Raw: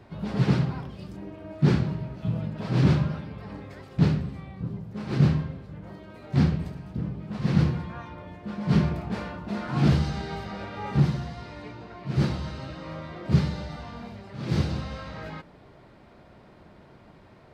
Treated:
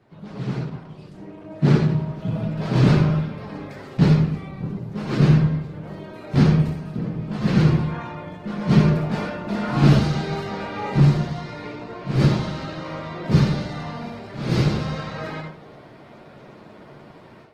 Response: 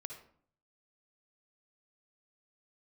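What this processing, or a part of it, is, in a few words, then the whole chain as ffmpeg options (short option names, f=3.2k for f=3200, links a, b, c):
far-field microphone of a smart speaker: -filter_complex "[1:a]atrim=start_sample=2205[a];[0:a][a]afir=irnorm=-1:irlink=0,highpass=130,dynaudnorm=f=870:g=3:m=13dB,volume=-1dB" -ar 48000 -c:a libopus -b:a 16k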